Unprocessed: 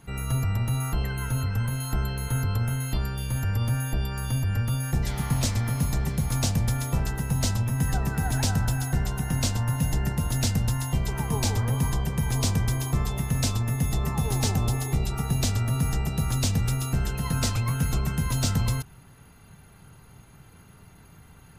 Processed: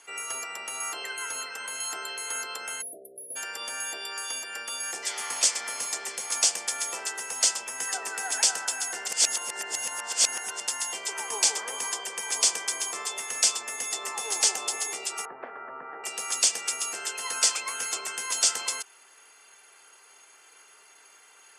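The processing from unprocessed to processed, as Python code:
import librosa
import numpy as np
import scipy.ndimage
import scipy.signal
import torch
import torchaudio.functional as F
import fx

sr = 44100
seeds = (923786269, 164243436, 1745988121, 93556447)

y = fx.spec_erase(x, sr, start_s=2.81, length_s=0.55, low_hz=720.0, high_hz=9800.0)
y = fx.steep_lowpass(y, sr, hz=1700.0, slope=36, at=(15.25, 16.04))
y = fx.edit(y, sr, fx.reverse_span(start_s=9.08, length_s=1.52), tone=tone)
y = scipy.signal.sosfilt(scipy.signal.ellip(3, 1.0, 80, [390.0, 8600.0], 'bandpass', fs=sr, output='sos'), y)
y = fx.tilt_eq(y, sr, slope=4.0)
y = fx.notch(y, sr, hz=3900.0, q=6.9)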